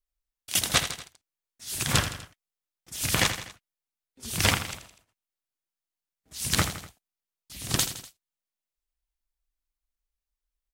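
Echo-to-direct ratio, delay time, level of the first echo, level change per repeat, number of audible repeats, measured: −9.5 dB, 82 ms, −11.0 dB, −5.5 dB, 3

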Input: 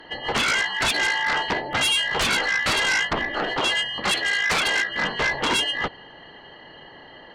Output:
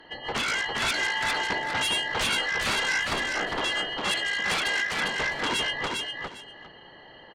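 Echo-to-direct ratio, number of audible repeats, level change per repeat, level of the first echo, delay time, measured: −3.5 dB, 2, −13.5 dB, −3.5 dB, 403 ms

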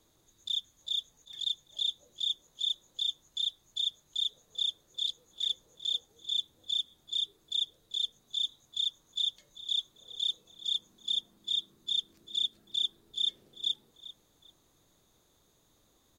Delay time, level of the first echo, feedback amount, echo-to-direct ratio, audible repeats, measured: 393 ms, −16.0 dB, 25%, −16.0 dB, 2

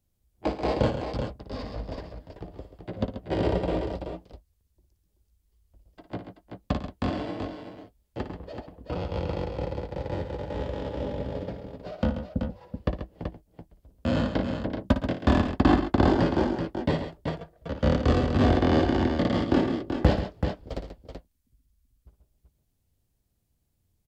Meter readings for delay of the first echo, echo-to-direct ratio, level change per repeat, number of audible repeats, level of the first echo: 57 ms, −4.0 dB, repeats not evenly spaced, 3, −10.0 dB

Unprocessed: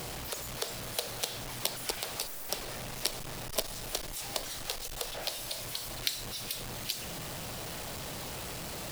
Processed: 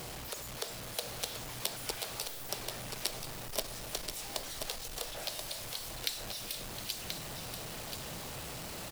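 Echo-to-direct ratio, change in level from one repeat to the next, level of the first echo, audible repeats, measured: −6.5 dB, repeats not evenly spaced, −6.5 dB, 1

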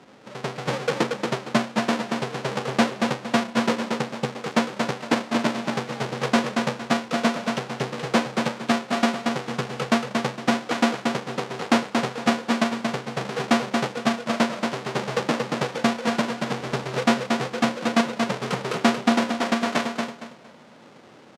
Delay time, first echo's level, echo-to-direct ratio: 230 ms, −4.5 dB, −4.0 dB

